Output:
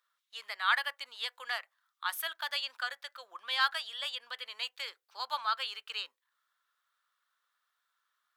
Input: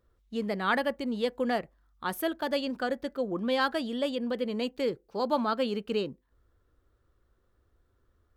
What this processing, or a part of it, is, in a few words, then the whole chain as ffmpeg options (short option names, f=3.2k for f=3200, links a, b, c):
headphones lying on a table: -af "highpass=f=1.1k:w=0.5412,highpass=f=1.1k:w=1.3066,equalizer=f=3.6k:t=o:w=0.48:g=4,volume=1.5dB"